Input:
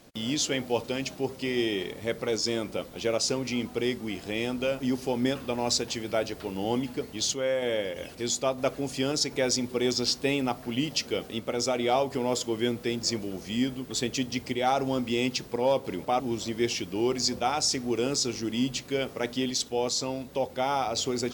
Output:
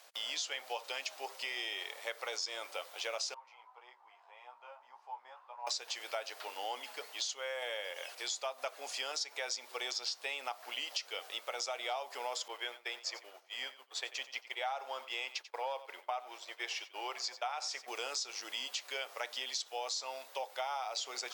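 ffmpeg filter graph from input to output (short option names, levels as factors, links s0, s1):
-filter_complex "[0:a]asettb=1/sr,asplit=3[s0][s1][s2];[s0]atrim=end=3.344[s3];[s1]atrim=start=3.34:end=5.67,asetpts=PTS-STARTPTS,afade=t=in:d=0.004:c=qsin,afade=t=out:st=2.326:d=0.004:c=qsin,flanger=delay=16:depth=2.4:speed=1.8,bandpass=f=950:t=q:w=5.6[s4];[s2]atrim=start=5.666[s5];[s3][s4]acrossfade=d=0.004:c1=hsin:c2=qsin[s6];[s6][s5]acrossfade=d=0.004:c1=qsin:c2=hsin,asettb=1/sr,asplit=3[s7][s8][s9];[s7]atrim=end=12.484[s10];[s8]atrim=start=12.48:end=17.88,asetpts=PTS-STARTPTS,afade=t=in:d=0.004:c=qsin,afade=t=out:st=5.396:d=0.004:c=qsin,bass=f=250:g=-14,treble=f=4000:g=-9,agate=range=0.0224:threshold=0.0178:ratio=3:release=100:detection=peak,aecho=1:1:90:0.141,atrim=end_sample=238140[s11];[s9]atrim=start=17.876[s12];[s10][s11]acrossfade=d=0.004:c1=hsin:c2=qsin[s13];[s13][s12]acrossfade=d=0.004:c1=qsin:c2=hsin,acrossover=split=7500[s14][s15];[s15]acompressor=threshold=0.00224:ratio=4:attack=1:release=60[s16];[s14][s16]amix=inputs=2:normalize=0,highpass=f=690:w=0.5412,highpass=f=690:w=1.3066,acompressor=threshold=0.0178:ratio=6"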